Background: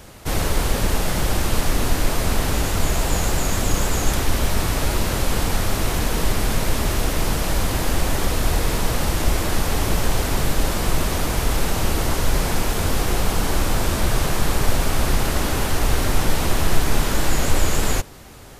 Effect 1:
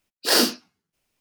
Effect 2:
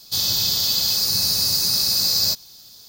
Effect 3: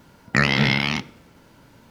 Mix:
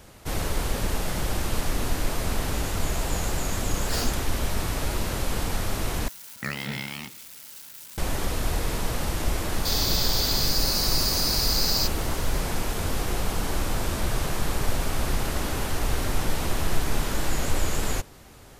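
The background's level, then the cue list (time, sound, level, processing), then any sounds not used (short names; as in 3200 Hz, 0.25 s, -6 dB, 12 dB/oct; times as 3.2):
background -6.5 dB
3.62 add 1 -13.5 dB
6.08 replace with 3 -13.5 dB + switching spikes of -19 dBFS
9.53 add 2 -6 dB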